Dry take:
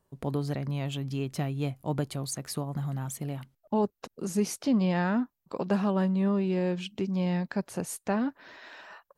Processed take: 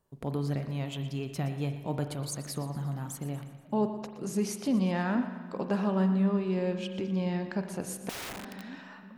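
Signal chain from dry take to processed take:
echo with a time of its own for lows and highs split 310 Hz, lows 472 ms, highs 119 ms, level −14 dB
spring reverb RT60 1.4 s, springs 42 ms, chirp 50 ms, DRR 8 dB
0:08.09–0:08.64: wrap-around overflow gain 32 dB
level −2.5 dB

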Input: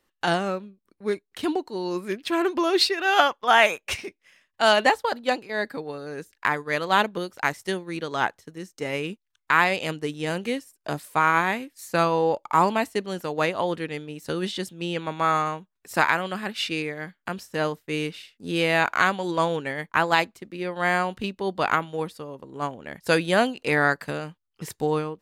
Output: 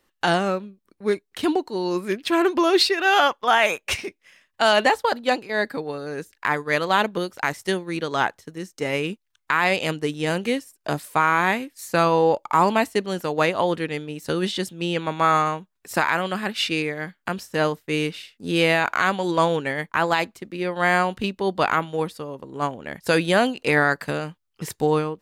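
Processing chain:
brickwall limiter −11.5 dBFS, peak gain reduction 7 dB
level +4 dB

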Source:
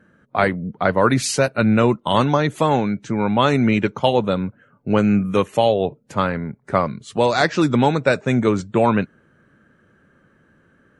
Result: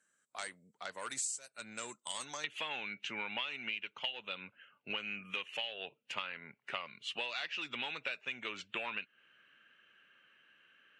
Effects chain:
soft clipping −7 dBFS, distortion −19 dB
resonant band-pass 7,800 Hz, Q 7.4, from 0:02.44 2,800 Hz
downward compressor 10 to 1, threshold −49 dBFS, peak gain reduction 20 dB
level +13 dB

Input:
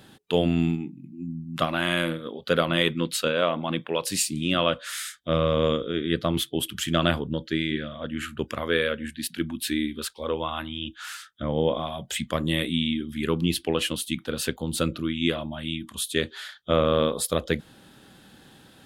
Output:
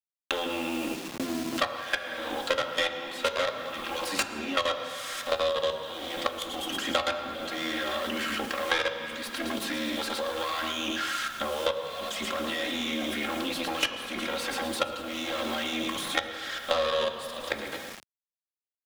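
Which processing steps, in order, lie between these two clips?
lower of the sound and its delayed copy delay 3.7 ms
low-shelf EQ 440 Hz −7.5 dB
notch filter 880 Hz, Q 12
repeating echo 112 ms, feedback 31%, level −13 dB
mid-hump overdrive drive 15 dB, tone 5,900 Hz, clips at −10.5 dBFS
noise gate with hold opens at −34 dBFS
output level in coarse steps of 22 dB
on a send at −4 dB: convolution reverb RT60 1.1 s, pre-delay 3 ms
on the sum: bit reduction 9 bits
high-shelf EQ 8,600 Hz −3.5 dB
multiband upward and downward compressor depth 100%

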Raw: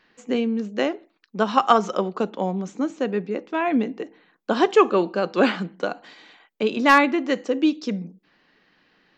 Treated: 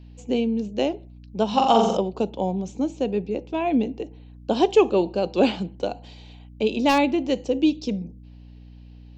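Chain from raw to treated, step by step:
mains hum 60 Hz, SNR 21 dB
flat-topped bell 1,500 Hz −14 dB 1.1 octaves
0:01.47–0:01.97: flutter between parallel walls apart 7.5 metres, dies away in 0.77 s

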